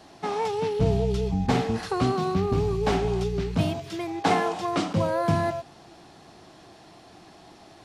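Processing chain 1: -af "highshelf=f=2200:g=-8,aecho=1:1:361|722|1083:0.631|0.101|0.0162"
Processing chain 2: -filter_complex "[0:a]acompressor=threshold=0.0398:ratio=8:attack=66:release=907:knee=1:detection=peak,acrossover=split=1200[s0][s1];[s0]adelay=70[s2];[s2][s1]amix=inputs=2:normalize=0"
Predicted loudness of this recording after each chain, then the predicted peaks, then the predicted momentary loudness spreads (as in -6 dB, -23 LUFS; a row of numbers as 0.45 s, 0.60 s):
-25.5 LUFS, -32.5 LUFS; -9.5 dBFS, -15.5 dBFS; 6 LU, 19 LU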